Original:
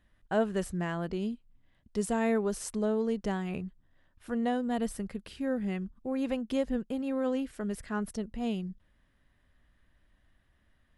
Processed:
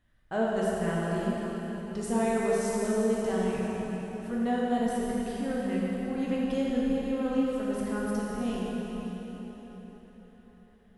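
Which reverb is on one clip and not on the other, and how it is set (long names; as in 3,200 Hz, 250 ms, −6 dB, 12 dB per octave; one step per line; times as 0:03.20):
dense smooth reverb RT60 4.6 s, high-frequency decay 0.8×, DRR −6 dB
level −4 dB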